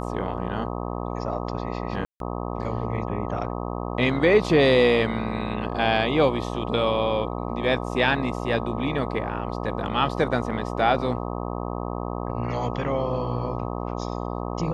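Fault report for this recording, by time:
buzz 60 Hz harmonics 21 -30 dBFS
2.05–2.2 gap 0.152 s

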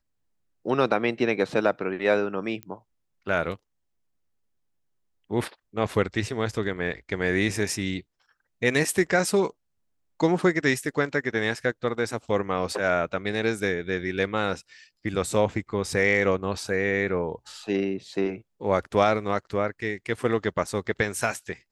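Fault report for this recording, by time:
2.63 pop -21 dBFS

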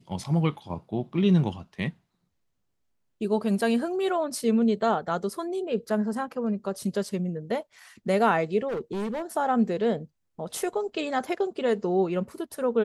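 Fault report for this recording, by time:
8.68–9.22 clipped -27 dBFS

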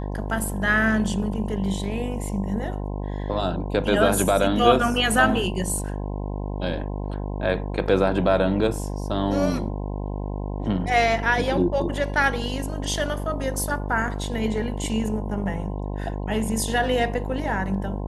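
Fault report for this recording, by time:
buzz 50 Hz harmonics 21 -29 dBFS

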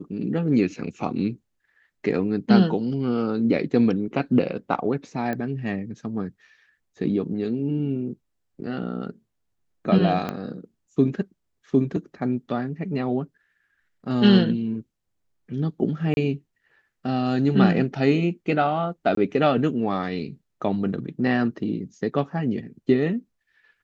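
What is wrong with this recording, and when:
5.33 pop -17 dBFS
10.29 pop -15 dBFS
16.14–16.17 gap 30 ms
19.15–19.17 gap 23 ms

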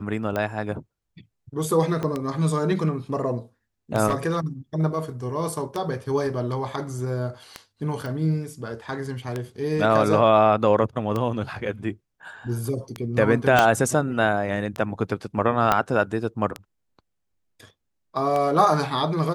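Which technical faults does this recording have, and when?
tick 33 1/3 rpm -14 dBFS
2.03 pop -16 dBFS
4.07–4.39 clipped -17 dBFS
8.06 pop
13.59 pop -3 dBFS
15.72 pop -5 dBFS

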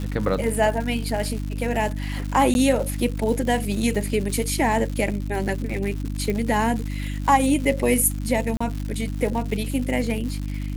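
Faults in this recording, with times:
crackle 180/s -29 dBFS
hum 50 Hz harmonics 6 -28 dBFS
2.54–2.55 gap 11 ms
6.3 pop -14 dBFS
8.57–8.61 gap 35 ms

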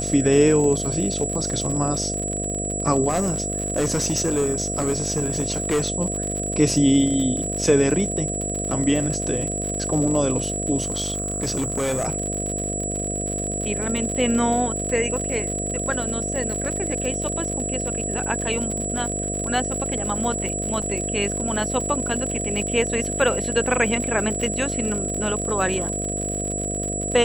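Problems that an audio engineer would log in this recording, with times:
buzz 50 Hz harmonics 14 -29 dBFS
crackle 69/s -27 dBFS
tone 7800 Hz -27 dBFS
3.08–5.84 clipped -17 dBFS
10.82–12.08 clipped -20 dBFS
20.82 gap 4.8 ms

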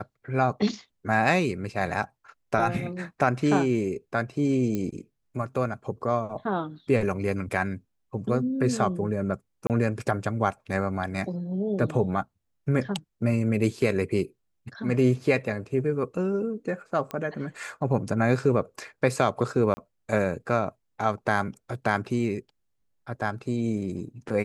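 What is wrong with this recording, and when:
4.75 pop -17 dBFS
9.67–9.7 gap 28 ms
17.11 pop -19 dBFS
19.74–19.77 gap 30 ms

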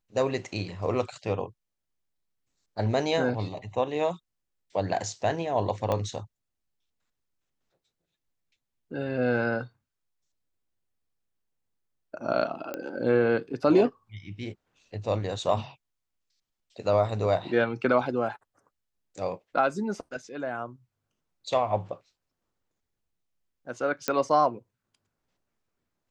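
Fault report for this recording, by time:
5.92 pop -15 dBFS
12.74 pop -19 dBFS
24.08 pop -10 dBFS

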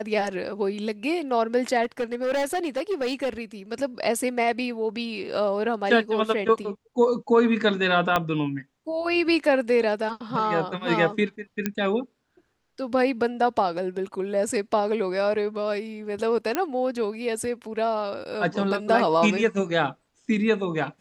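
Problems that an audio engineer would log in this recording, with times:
1.83–3.3 clipped -21.5 dBFS
8.16 pop -8 dBFS
11.66 pop -10 dBFS
16.55 pop -9 dBFS

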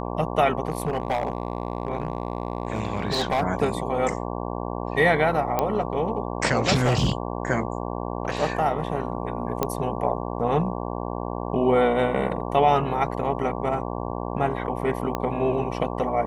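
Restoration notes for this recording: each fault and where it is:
buzz 60 Hz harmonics 19 -30 dBFS
0.65–3.42 clipped -18.5 dBFS
5.59 pop -9 dBFS
6.73–7.12 clipped -16 dBFS
9.63 pop -8 dBFS
15.15 pop -12 dBFS

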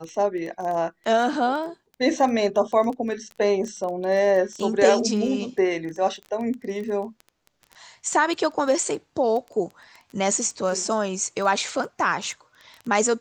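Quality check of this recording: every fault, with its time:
crackle 12/s -30 dBFS

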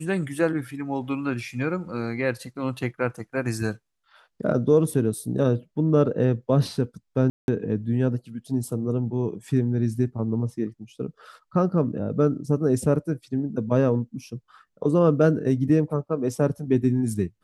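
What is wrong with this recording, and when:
7.3–7.48 gap 0.181 s

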